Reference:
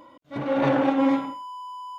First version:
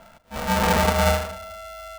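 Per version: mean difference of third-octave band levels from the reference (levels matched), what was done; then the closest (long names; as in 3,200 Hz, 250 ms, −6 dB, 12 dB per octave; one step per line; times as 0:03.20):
13.0 dB: Butterworth low-pass 3,300 Hz 72 dB per octave
mains-hum notches 50/100/150/200/250 Hz
rectangular room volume 2,900 cubic metres, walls furnished, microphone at 0.99 metres
ring modulator with a square carrier 350 Hz
level +1 dB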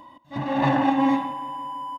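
4.5 dB: feedback echo with a low-pass in the loop 167 ms, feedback 73%, low-pass 4,400 Hz, level −17 dB
floating-point word with a short mantissa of 8 bits
comb filter 1.1 ms, depth 82%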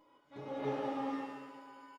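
7.0 dB: tuned comb filter 420 Hz, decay 0.17 s, harmonics all, mix 90%
single-tap delay 702 ms −21 dB
dynamic equaliser 1,800 Hz, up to −6 dB, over −55 dBFS, Q 0.78
reverb with rising layers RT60 1.1 s, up +7 semitones, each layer −8 dB, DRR −1 dB
level −3 dB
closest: second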